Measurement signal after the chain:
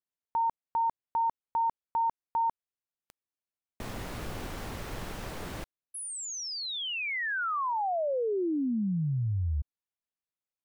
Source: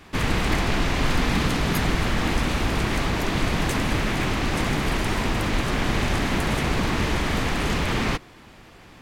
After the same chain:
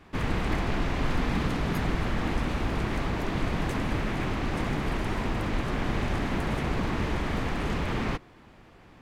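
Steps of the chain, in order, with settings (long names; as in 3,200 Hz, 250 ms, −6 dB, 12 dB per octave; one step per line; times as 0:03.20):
high-shelf EQ 2,800 Hz −10 dB
level −4.5 dB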